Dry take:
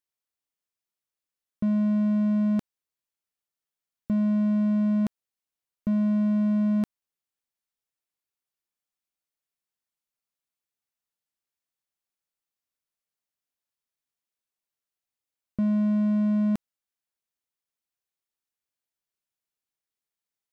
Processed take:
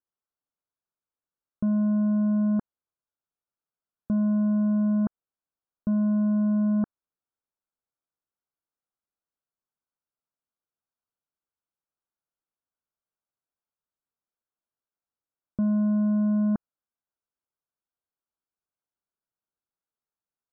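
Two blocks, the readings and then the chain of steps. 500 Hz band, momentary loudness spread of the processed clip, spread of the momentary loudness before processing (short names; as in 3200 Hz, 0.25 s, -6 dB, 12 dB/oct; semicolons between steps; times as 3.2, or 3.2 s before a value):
0.0 dB, 7 LU, 7 LU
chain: steep low-pass 1600 Hz 96 dB/oct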